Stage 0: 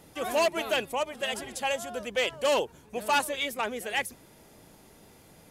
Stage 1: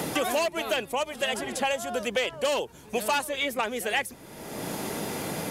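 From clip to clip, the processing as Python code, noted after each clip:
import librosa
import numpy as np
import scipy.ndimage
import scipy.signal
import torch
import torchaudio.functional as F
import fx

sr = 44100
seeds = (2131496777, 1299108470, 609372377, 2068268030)

y = fx.band_squash(x, sr, depth_pct=100)
y = F.gain(torch.from_numpy(y), 1.0).numpy()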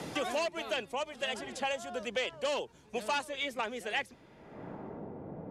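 y = fx.high_shelf(x, sr, hz=7400.0, db=4.5)
y = fx.filter_sweep_lowpass(y, sr, from_hz=6000.0, to_hz=700.0, start_s=3.88, end_s=5.11, q=0.79)
y = fx.band_widen(y, sr, depth_pct=40)
y = F.gain(torch.from_numpy(y), -7.0).numpy()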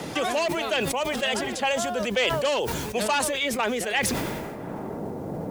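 y = fx.rider(x, sr, range_db=4, speed_s=2.0)
y = fx.dmg_noise_colour(y, sr, seeds[0], colour='white', level_db=-70.0)
y = fx.sustainer(y, sr, db_per_s=25.0)
y = F.gain(torch.from_numpy(y), 8.0).numpy()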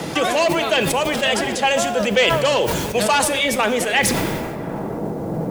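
y = fx.room_shoebox(x, sr, seeds[1], volume_m3=1900.0, walls='mixed', distance_m=0.69)
y = F.gain(torch.from_numpy(y), 6.5).numpy()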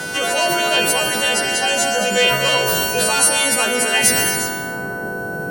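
y = fx.freq_snap(x, sr, grid_st=2)
y = fx.rev_gated(y, sr, seeds[2], gate_ms=390, shape='flat', drr_db=2.5)
y = y + 10.0 ** (-23.0 / 20.0) * np.sin(2.0 * np.pi * 1500.0 * np.arange(len(y)) / sr)
y = F.gain(torch.from_numpy(y), -3.5).numpy()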